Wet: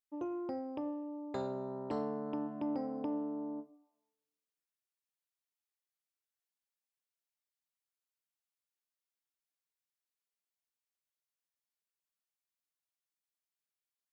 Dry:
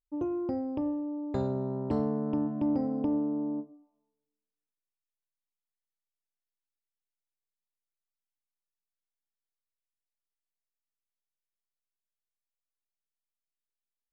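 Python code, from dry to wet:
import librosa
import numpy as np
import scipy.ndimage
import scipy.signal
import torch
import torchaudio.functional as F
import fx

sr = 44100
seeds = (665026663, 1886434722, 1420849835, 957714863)

y = fx.highpass(x, sr, hz=720.0, slope=6)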